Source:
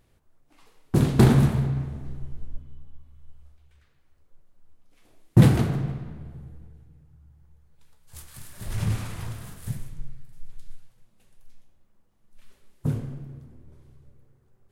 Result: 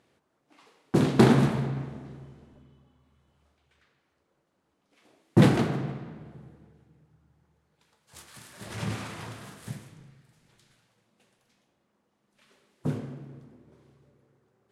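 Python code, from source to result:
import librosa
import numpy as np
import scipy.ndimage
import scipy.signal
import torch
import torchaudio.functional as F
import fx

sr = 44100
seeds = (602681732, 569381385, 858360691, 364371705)

y = scipy.signal.sosfilt(scipy.signal.butter(2, 210.0, 'highpass', fs=sr, output='sos'), x)
y = fx.air_absorb(y, sr, metres=51.0)
y = y * 10.0 ** (2.5 / 20.0)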